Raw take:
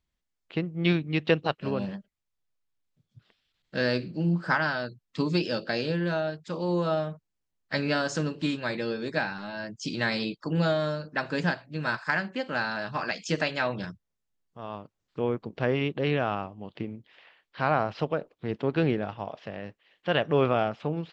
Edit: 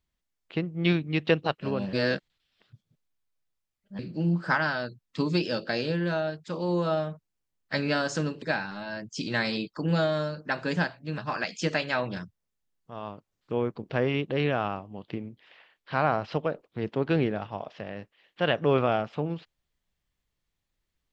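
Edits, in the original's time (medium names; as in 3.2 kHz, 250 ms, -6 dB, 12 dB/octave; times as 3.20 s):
1.93–3.99 s: reverse
8.42–9.09 s: delete
11.85–12.85 s: delete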